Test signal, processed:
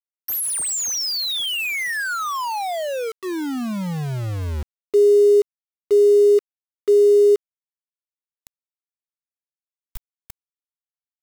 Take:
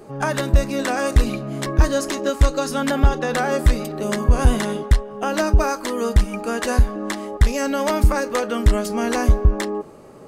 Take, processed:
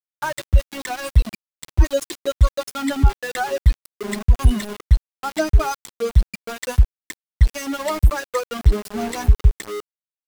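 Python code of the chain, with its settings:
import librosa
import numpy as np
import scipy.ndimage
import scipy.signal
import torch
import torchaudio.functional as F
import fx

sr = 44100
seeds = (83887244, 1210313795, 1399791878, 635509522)

y = fx.bin_expand(x, sr, power=3.0)
y = np.where(np.abs(y) >= 10.0 ** (-31.5 / 20.0), y, 0.0)
y = y * 10.0 ** (4.0 / 20.0)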